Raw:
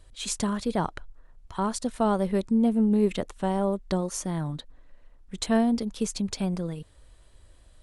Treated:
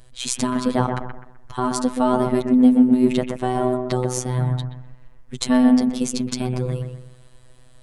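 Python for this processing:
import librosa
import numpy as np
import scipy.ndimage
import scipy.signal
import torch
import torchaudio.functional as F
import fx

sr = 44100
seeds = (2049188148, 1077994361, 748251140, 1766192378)

p1 = fx.peak_eq(x, sr, hz=170.0, db=6.0, octaves=0.55)
p2 = p1 + fx.echo_bbd(p1, sr, ms=127, stages=2048, feedback_pct=35, wet_db=-5.5, dry=0)
p3 = fx.robotise(p2, sr, hz=126.0)
y = F.gain(torch.from_numpy(p3), 7.5).numpy()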